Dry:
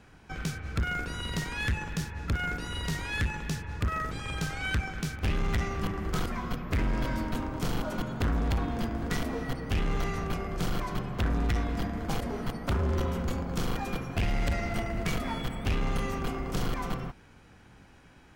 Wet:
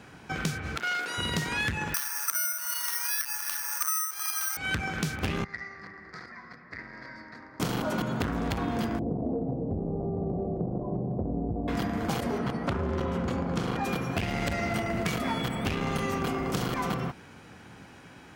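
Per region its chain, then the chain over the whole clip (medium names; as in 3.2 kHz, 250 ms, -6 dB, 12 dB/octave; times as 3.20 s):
0.76–1.18 s: high-pass 490 Hz + transformer saturation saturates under 3.7 kHz
1.94–4.57 s: resonant high-pass 1.2 kHz, resonance Q 2.7 + careless resampling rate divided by 6×, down filtered, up zero stuff
5.44–7.60 s: two resonant band-passes 3 kHz, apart 1.3 oct + tilt EQ -4.5 dB/octave
8.99–11.68 s: steep low-pass 710 Hz + compression 4:1, threshold -29 dBFS
12.38–13.84 s: low-pass 11 kHz + treble shelf 4.2 kHz -10 dB
whole clip: high-pass 110 Hz 12 dB/octave; compression, threshold -33 dBFS; trim +7.5 dB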